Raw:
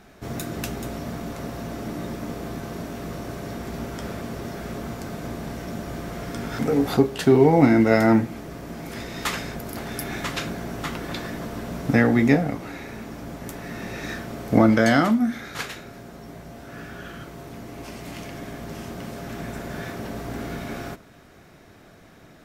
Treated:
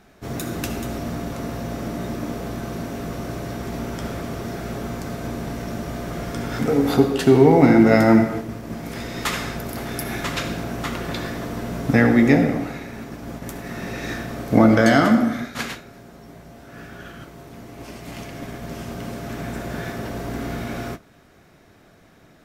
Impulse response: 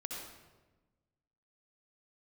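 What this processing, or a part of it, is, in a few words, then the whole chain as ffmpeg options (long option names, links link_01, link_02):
keyed gated reverb: -filter_complex "[0:a]asplit=3[link_01][link_02][link_03];[1:a]atrim=start_sample=2205[link_04];[link_02][link_04]afir=irnorm=-1:irlink=0[link_05];[link_03]apad=whole_len=989720[link_06];[link_05][link_06]sidechaingate=range=-33dB:threshold=-35dB:ratio=16:detection=peak,volume=0.5dB[link_07];[link_01][link_07]amix=inputs=2:normalize=0,volume=-2.5dB"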